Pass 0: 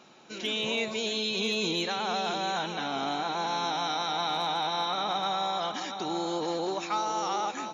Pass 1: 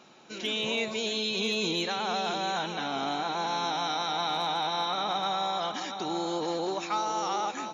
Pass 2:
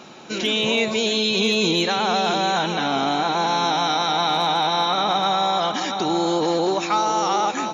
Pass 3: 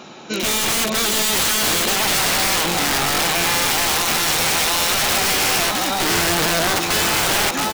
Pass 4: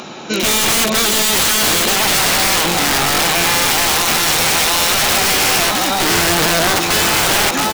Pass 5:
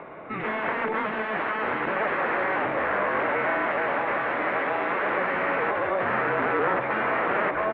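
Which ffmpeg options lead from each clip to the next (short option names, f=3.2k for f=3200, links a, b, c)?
-af anull
-filter_complex "[0:a]lowshelf=f=390:g=3,asplit=2[a][b];[b]alimiter=level_in=5dB:limit=-24dB:level=0:latency=1:release=364,volume=-5dB,volume=0dB[c];[a][c]amix=inputs=2:normalize=0,volume=6dB"
-af "aeval=exprs='(mod(7.5*val(0)+1,2)-1)/7.5':c=same,aecho=1:1:709|1418|2127|2836:0.376|0.135|0.0487|0.0175,volume=3.5dB"
-filter_complex "[0:a]asplit=2[a][b];[b]alimiter=limit=-19dB:level=0:latency=1,volume=3dB[c];[a][c]amix=inputs=2:normalize=0,acompressor=mode=upward:threshold=-34dB:ratio=2.5"
-af "highpass=f=490:t=q:w=0.5412,highpass=f=490:t=q:w=1.307,lowpass=f=2.2k:t=q:w=0.5176,lowpass=f=2.2k:t=q:w=0.7071,lowpass=f=2.2k:t=q:w=1.932,afreqshift=-210,volume=-6dB"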